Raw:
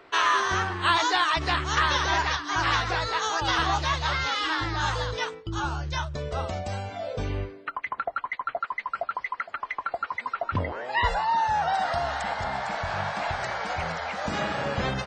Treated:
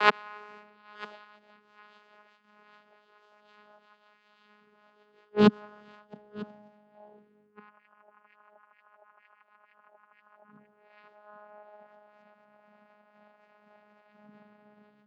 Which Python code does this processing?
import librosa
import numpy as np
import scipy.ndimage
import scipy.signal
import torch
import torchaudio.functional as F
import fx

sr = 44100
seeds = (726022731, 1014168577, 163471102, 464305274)

y = fx.spec_swells(x, sr, rise_s=0.43)
y = fx.recorder_agc(y, sr, target_db=-15.5, rise_db_per_s=37.0, max_gain_db=30)
y = fx.hum_notches(y, sr, base_hz=50, count=7)
y = fx.gate_flip(y, sr, shuts_db=-20.0, range_db=-37)
y = fx.vocoder(y, sr, bands=8, carrier='saw', carrier_hz=209.0)
y = scipy.signal.sosfilt(scipy.signal.butter(2, 4200.0, 'lowpass', fs=sr, output='sos'), y)
y = y + 10.0 ** (-18.5 / 20.0) * np.pad(y, (int(948 * sr / 1000.0), 0))[:len(y)]
y = fx.band_widen(y, sr, depth_pct=100)
y = y * librosa.db_to_amplitude(6.5)